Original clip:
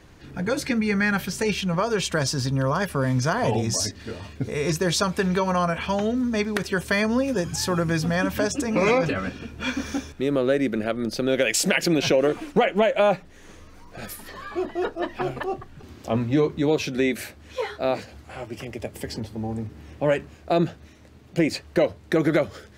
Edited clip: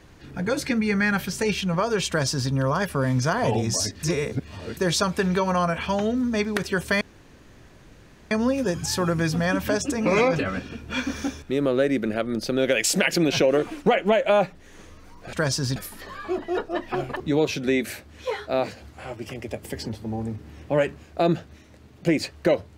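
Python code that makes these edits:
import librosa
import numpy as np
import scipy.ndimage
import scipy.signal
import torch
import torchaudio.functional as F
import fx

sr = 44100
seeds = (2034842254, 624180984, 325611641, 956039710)

y = fx.edit(x, sr, fx.duplicate(start_s=2.08, length_s=0.43, to_s=14.03),
    fx.reverse_span(start_s=4.03, length_s=0.74),
    fx.insert_room_tone(at_s=7.01, length_s=1.3),
    fx.cut(start_s=15.47, length_s=1.04), tone=tone)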